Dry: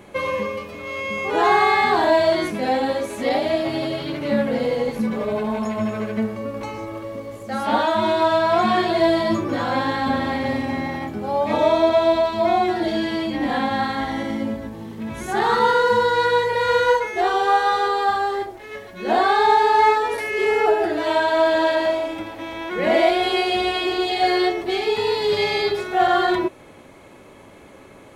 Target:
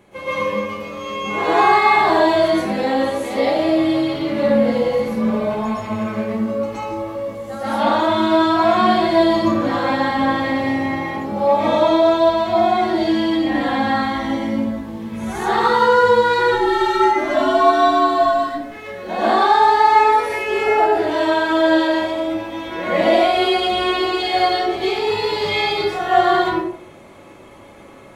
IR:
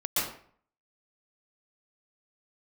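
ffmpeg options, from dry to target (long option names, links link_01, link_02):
-filter_complex "[0:a]asplit=3[link_01][link_02][link_03];[link_01]afade=type=out:start_time=16.38:duration=0.02[link_04];[link_02]afreqshift=-110,afade=type=in:start_time=16.38:duration=0.02,afade=type=out:start_time=18.61:duration=0.02[link_05];[link_03]afade=type=in:start_time=18.61:duration=0.02[link_06];[link_04][link_05][link_06]amix=inputs=3:normalize=0[link_07];[1:a]atrim=start_sample=2205[link_08];[link_07][link_08]afir=irnorm=-1:irlink=0,volume=-6.5dB"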